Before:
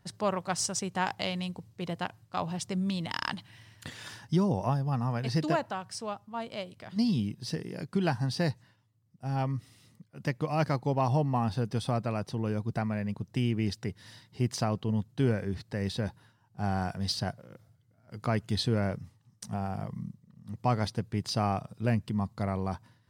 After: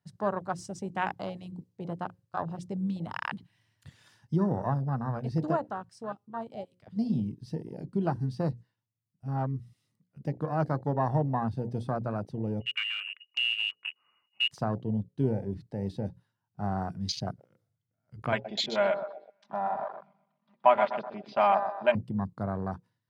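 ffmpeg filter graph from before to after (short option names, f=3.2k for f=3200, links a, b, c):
-filter_complex "[0:a]asettb=1/sr,asplit=3[a][b][c];[a]atrim=end=12.604[d];[b]atrim=start=12.6:end=14.51,asetpts=PTS-STARTPTS,afade=t=in:d=0.004:c=qsin,afade=t=out:st=1.906:d=0.004:c=qsin,lowpass=f=2.6k:t=q:w=0.5098,lowpass=f=2.6k:t=q:w=0.6013,lowpass=f=2.6k:t=q:w=0.9,lowpass=f=2.6k:t=q:w=2.563,afreqshift=-3000,adynamicequalizer=threshold=0.0158:dfrequency=1800:dqfactor=0.7:tfrequency=1800:tqfactor=0.7:attack=5:release=100:ratio=0.375:range=2:mode=cutabove:tftype=highshelf[e];[c]atrim=start=14.506[f];[d][e]acrossfade=d=0.004:c1=hsin:c2=qsin[g];[g][f]acrossfade=d=0.004:c1=qsin:c2=hsin,asettb=1/sr,asplit=3[h][i][j];[h]atrim=end=18.324[k];[i]atrim=start=18.32:end=21.95,asetpts=PTS-STARTPTS,afade=t=in:d=0.004:c=qsin,afade=t=out:st=3.626:d=0.004:c=qsin,highpass=410,equalizer=f=430:t=q:w=4:g=-7,equalizer=f=620:t=q:w=4:g=9,equalizer=f=940:t=q:w=4:g=10,equalizer=f=1.5k:t=q:w=4:g=5,equalizer=f=2.4k:t=q:w=4:g=9,equalizer=f=3.4k:t=q:w=4:g=6,lowpass=f=4.2k:w=0.5412,lowpass=f=4.2k:w=1.3066,aecho=1:1:5:0.78,atrim=end_sample=160083,aecho=1:1:125|250|375|500|625:0.355|0.156|0.0687|0.0302|0.0133,atrim=end_sample=160083[l];[j]atrim=start=21.946[m];[k][l]acrossfade=d=0.004:c1=hsin:c2=qsin[n];[n][m]acrossfade=d=0.004:c1=qsin:c2=hsin,highpass=f=92:w=0.5412,highpass=f=92:w=1.3066,bandreject=f=60:t=h:w=6,bandreject=f=120:t=h:w=6,bandreject=f=180:t=h:w=6,bandreject=f=240:t=h:w=6,bandreject=f=300:t=h:w=6,bandreject=f=360:t=h:w=6,bandreject=f=420:t=h:w=6,bandreject=f=480:t=h:w=6,bandreject=f=540:t=h:w=6,afwtdn=0.02"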